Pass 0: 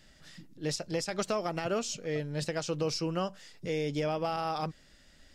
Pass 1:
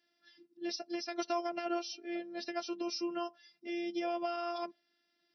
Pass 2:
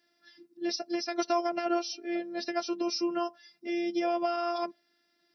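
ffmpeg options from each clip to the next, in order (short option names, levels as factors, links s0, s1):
-af "afftfilt=real='hypot(re,im)*cos(PI*b)':imag='0':win_size=512:overlap=0.75,afftdn=nr=12:nf=-50,afftfilt=real='re*between(b*sr/4096,140,5900)':imag='im*between(b*sr/4096,140,5900)':win_size=4096:overlap=0.75"
-af "equalizer=f=3000:t=o:w=0.55:g=-5,volume=2.11"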